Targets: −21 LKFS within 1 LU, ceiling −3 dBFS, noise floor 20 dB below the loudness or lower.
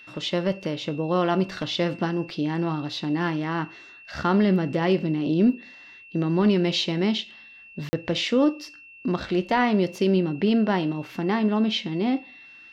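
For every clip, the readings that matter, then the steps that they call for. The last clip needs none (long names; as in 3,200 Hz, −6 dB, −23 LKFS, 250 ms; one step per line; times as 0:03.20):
number of dropouts 1; longest dropout 40 ms; interfering tone 2,700 Hz; level of the tone −45 dBFS; integrated loudness −24.5 LKFS; sample peak −12.0 dBFS; target loudness −21.0 LKFS
→ repair the gap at 0:07.89, 40 ms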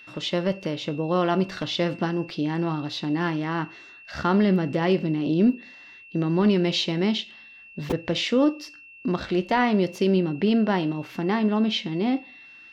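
number of dropouts 0; interfering tone 2,700 Hz; level of the tone −45 dBFS
→ notch filter 2,700 Hz, Q 30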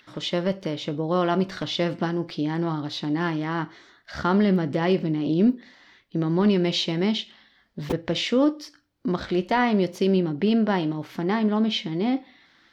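interfering tone none found; integrated loudness −24.5 LKFS; sample peak −12.0 dBFS; target loudness −21.0 LKFS
→ level +3.5 dB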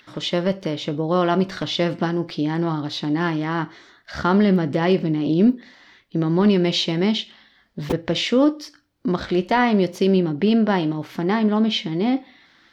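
integrated loudness −21.0 LKFS; sample peak −8.5 dBFS; background noise floor −57 dBFS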